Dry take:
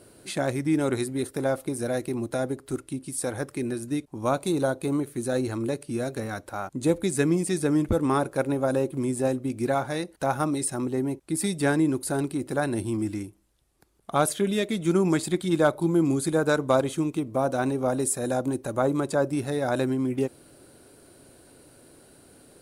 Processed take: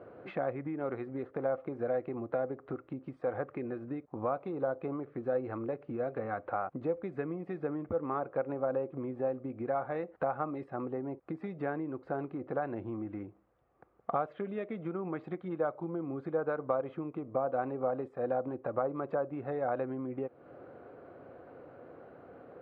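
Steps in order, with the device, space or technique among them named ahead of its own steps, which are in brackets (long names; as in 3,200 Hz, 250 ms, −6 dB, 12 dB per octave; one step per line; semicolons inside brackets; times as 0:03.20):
bass amplifier (downward compressor 5 to 1, threshold −36 dBFS, peak gain reduction 18 dB; loudspeaker in its box 84–2,100 Hz, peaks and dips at 500 Hz +10 dB, 730 Hz +9 dB, 1,200 Hz +9 dB)
dynamic equaliser 2,700 Hz, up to +4 dB, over −55 dBFS, Q 1.7
level −1.5 dB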